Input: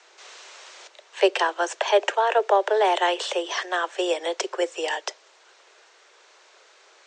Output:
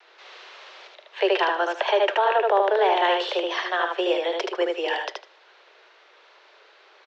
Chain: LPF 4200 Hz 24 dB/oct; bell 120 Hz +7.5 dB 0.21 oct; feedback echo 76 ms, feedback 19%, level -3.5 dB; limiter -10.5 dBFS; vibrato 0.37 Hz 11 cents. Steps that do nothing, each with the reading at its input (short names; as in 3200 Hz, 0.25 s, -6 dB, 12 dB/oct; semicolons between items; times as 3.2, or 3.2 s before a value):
bell 120 Hz: input band starts at 300 Hz